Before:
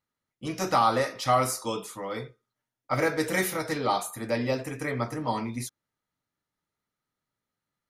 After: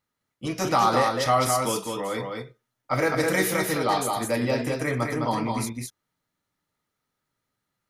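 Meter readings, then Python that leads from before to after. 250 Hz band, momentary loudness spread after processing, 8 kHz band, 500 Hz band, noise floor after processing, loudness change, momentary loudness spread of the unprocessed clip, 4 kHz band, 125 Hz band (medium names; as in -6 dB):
+4.0 dB, 12 LU, +5.0 dB, +3.5 dB, -82 dBFS, +3.5 dB, 13 LU, +4.0 dB, +4.0 dB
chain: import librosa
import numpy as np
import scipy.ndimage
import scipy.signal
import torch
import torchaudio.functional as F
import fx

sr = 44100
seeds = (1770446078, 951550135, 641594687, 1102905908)

p1 = fx.level_steps(x, sr, step_db=18)
p2 = x + (p1 * librosa.db_to_amplitude(-1.0))
y = p2 + 10.0 ** (-4.0 / 20.0) * np.pad(p2, (int(208 * sr / 1000.0), 0))[:len(p2)]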